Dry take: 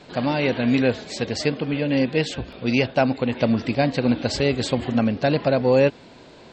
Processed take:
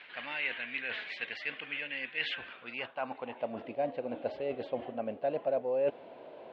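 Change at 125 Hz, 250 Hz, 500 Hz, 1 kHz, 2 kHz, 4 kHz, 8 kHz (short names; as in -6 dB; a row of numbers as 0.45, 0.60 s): -29.5 dB, -23.5 dB, -12.5 dB, -12.0 dB, -7.5 dB, -11.5 dB, under -35 dB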